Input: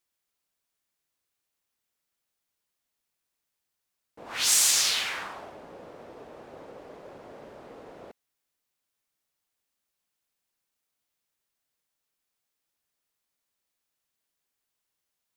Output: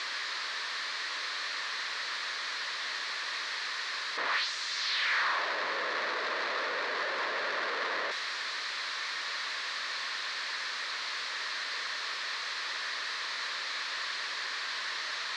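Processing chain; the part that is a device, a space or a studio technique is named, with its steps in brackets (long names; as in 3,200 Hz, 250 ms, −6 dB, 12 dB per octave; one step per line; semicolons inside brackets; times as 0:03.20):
home computer beeper (sign of each sample alone; loudspeaker in its box 700–4,600 Hz, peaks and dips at 770 Hz −10 dB, 1,100 Hz +5 dB, 1,800 Hz +8 dB, 2,900 Hz −4 dB, 4,200 Hz +5 dB)
level +6.5 dB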